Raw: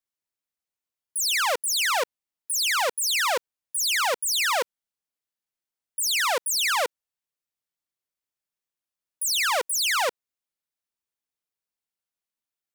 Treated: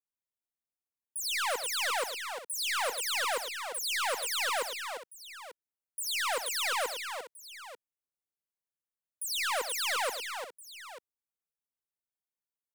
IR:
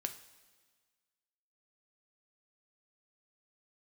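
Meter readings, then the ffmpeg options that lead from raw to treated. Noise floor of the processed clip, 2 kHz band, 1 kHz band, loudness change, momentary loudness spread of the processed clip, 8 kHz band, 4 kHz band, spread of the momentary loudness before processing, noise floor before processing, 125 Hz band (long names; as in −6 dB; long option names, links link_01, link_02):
below −85 dBFS, −7.0 dB, −6.5 dB, −8.0 dB, 16 LU, −9.0 dB, −7.5 dB, 8 LU, below −85 dBFS, can't be measured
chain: -filter_complex "[0:a]acrossover=split=220|6100[link_01][link_02][link_03];[link_02]adynamicsmooth=sensitivity=7:basefreq=2000[link_04];[link_01][link_04][link_03]amix=inputs=3:normalize=0,aecho=1:1:82|107|348|890:0.126|0.299|0.422|0.178,volume=-8dB"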